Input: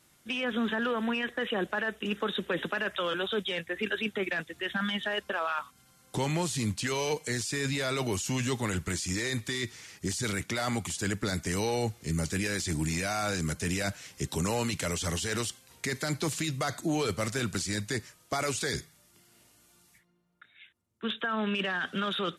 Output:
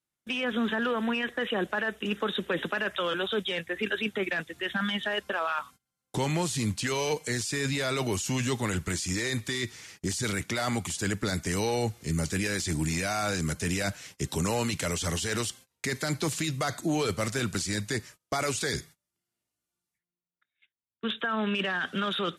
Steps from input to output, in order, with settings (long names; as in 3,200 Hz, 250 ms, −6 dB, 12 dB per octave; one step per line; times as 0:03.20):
noise gate −49 dBFS, range −27 dB
level +1.5 dB